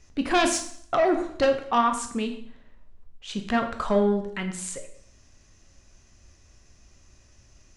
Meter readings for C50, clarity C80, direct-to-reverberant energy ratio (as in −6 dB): 9.5 dB, 12.0 dB, 5.0 dB